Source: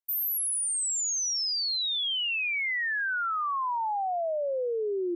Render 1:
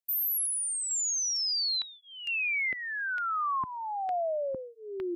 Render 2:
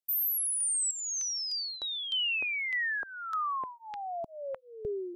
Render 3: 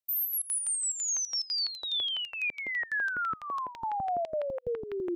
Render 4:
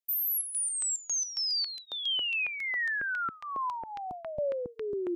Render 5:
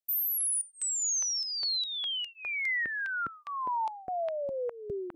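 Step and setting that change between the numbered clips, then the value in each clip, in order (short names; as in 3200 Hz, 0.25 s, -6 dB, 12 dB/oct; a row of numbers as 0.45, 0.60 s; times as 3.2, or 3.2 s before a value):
step phaser, rate: 2.2, 3.3, 12, 7.3, 4.9 Hz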